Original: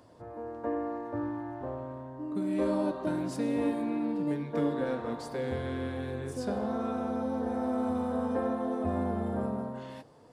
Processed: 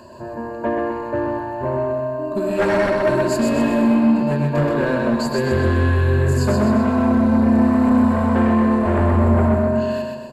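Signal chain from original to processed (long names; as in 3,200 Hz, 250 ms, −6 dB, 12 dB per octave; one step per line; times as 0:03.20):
EQ curve with evenly spaced ripples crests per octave 1.4, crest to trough 16 dB
sine wavefolder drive 5 dB, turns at −18 dBFS
on a send: repeating echo 127 ms, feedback 48%, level −3.5 dB
on the sum: level +3.5 dB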